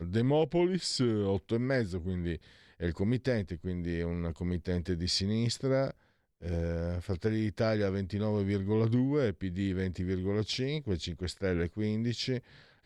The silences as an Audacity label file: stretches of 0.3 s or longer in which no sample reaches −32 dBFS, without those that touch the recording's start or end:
2.350000	2.820000	silence
5.900000	6.460000	silence